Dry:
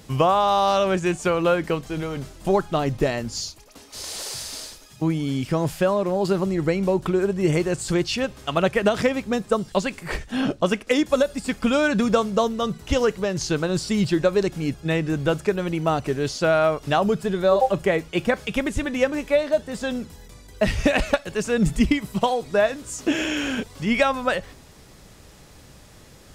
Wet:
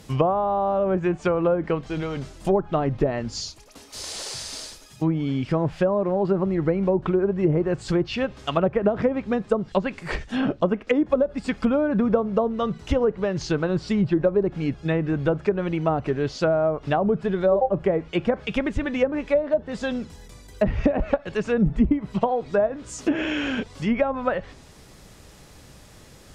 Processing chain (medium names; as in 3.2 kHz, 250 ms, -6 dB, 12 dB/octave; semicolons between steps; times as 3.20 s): low-pass that closes with the level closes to 740 Hz, closed at -15.5 dBFS